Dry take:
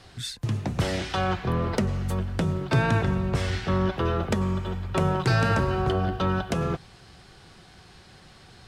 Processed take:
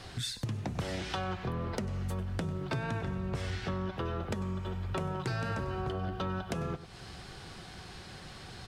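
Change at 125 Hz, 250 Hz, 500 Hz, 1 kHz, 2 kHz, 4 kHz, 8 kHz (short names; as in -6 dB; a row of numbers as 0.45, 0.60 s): -9.5, -9.5, -10.0, -10.0, -10.0, -6.5, -6.0 dB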